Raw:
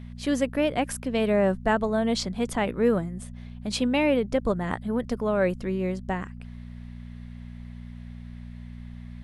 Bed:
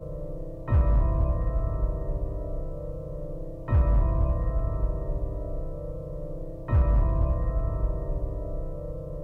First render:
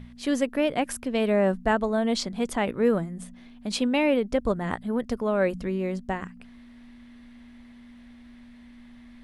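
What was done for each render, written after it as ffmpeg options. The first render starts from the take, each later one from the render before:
-af "bandreject=f=60:t=h:w=4,bandreject=f=120:t=h:w=4,bandreject=f=180:t=h:w=4"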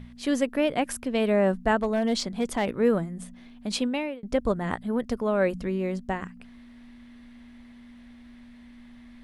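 -filter_complex "[0:a]asettb=1/sr,asplit=3[a][b][c];[a]atrim=end=1.774[d];[b]atrim=start=1.77:end=2.79,asetpts=PTS-STARTPTS,afade=t=in:d=0.004:c=qsin,afade=t=out:st=1.016:d=0.004:c=qsin,asoftclip=type=hard:threshold=-18dB[e];[c]atrim=start=2.786[f];[d][e]acrossfade=d=0.004:c1=hsin:c2=qsin[g];[g][f]acrossfade=d=0.004:c1=qsin:c2=hsin,asplit=2[h][i];[h]atrim=end=4.23,asetpts=PTS-STARTPTS,afade=t=out:st=3.75:d=0.48[j];[i]atrim=start=4.23,asetpts=PTS-STARTPTS,afade=t=in:d=0.004:c=hsin[k];[j][k]concat=n=2:v=0:a=1"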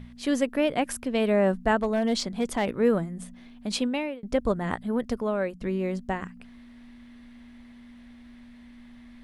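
-filter_complex "[0:a]asplit=2[a][b];[a]atrim=end=5.61,asetpts=PTS-STARTPTS,afade=t=out:st=5.04:d=0.57:c=qsin:silence=0.16788[c];[b]atrim=start=5.61,asetpts=PTS-STARTPTS,afade=t=in:d=0.004:c=hsin:silence=0.16788[d];[c][d]concat=n=2:v=0:a=1"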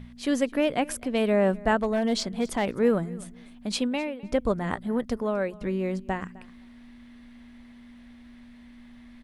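-af "aecho=1:1:257|514:0.0841|0.0126"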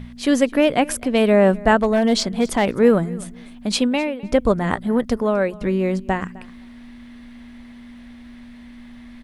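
-af "volume=8dB"

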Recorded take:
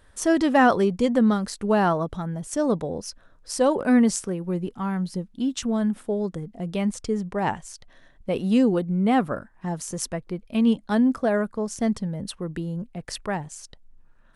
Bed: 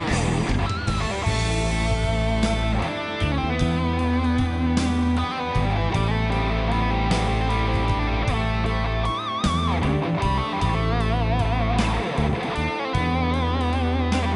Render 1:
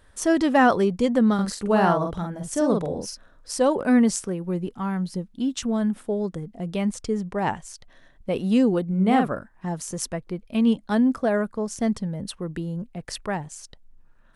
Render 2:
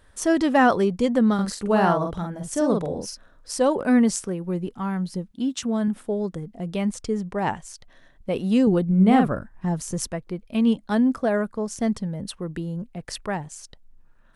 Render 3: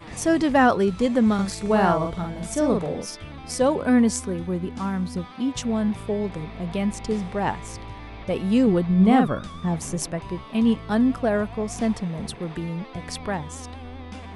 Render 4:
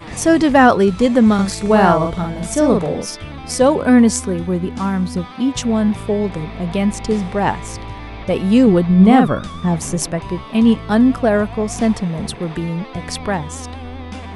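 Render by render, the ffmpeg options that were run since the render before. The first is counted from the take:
-filter_complex "[0:a]asettb=1/sr,asplit=3[a][b][c];[a]atrim=end=1.344[d];[b]atrim=start=1.34:end=3.51,asetpts=PTS-STARTPTS,afade=t=in:d=0.004:c=qsin,afade=t=out:st=2.166:d=0.004:c=qsin,asplit=2[e][f];[f]adelay=46,volume=-3.5dB[g];[e][g]amix=inputs=2:normalize=0,atrim=end_sample=95697[h];[c]atrim=start=3.506[i];[d][h]acrossfade=d=0.004:c1=hsin:c2=qsin[j];[j][i]acrossfade=d=0.004:c1=qsin:c2=hsin,asettb=1/sr,asplit=3[k][l][m];[k]atrim=end=8.874[n];[l]atrim=start=8.87:end=9.27,asetpts=PTS-STARTPTS,afade=t=in:d=0.004:c=qsin,afade=t=out:st=0.396:d=0.004:c=qsin,asplit=2[o][p];[p]adelay=43,volume=-5dB[q];[o][q]amix=inputs=2:normalize=0,atrim=end_sample=17640[r];[m]atrim=start=9.266[s];[n][r]acrossfade=d=0.004:c1=hsin:c2=qsin[t];[t][s]acrossfade=d=0.004:c1=qsin:c2=hsin"
-filter_complex "[0:a]asettb=1/sr,asplit=3[a][b][c];[a]atrim=end=5.314[d];[b]atrim=start=5.31:end=5.88,asetpts=PTS-STARTPTS,afade=t=in:d=0.004:c=qsin,afade=t=out:st=0.566:d=0.004:c=qsin,highpass=76[e];[c]atrim=start=5.876[f];[d][e]acrossfade=d=0.004:c1=hsin:c2=qsin[g];[g][f]acrossfade=d=0.004:c1=qsin:c2=hsin,asettb=1/sr,asplit=3[h][i][j];[h]atrim=end=8.674[k];[i]atrim=start=8.67:end=10.07,asetpts=PTS-STARTPTS,afade=t=in:d=0.004:c=qsin,afade=t=out:st=1.396:d=0.004:c=qsin,lowshelf=f=170:g=10.5[l];[j]atrim=start=10.066[m];[k][l]acrossfade=d=0.004:c1=hsin:c2=qsin[n];[n][m]acrossfade=d=0.004:c1=qsin:c2=hsin"
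-filter_complex "[1:a]volume=-16dB[a];[0:a][a]amix=inputs=2:normalize=0"
-af "volume=7.5dB,alimiter=limit=-1dB:level=0:latency=1"

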